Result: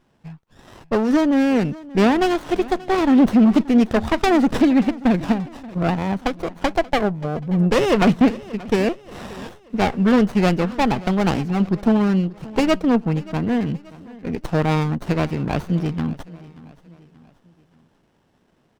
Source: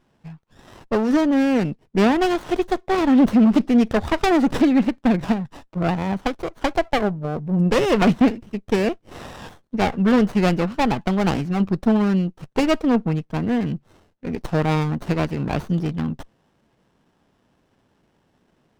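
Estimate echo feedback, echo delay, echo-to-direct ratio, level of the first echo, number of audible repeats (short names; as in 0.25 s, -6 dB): 46%, 0.581 s, -19.0 dB, -20.0 dB, 3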